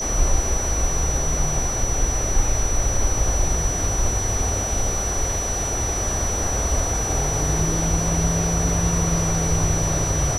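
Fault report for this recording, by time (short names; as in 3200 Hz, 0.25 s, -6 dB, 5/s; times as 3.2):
tone 5900 Hz -25 dBFS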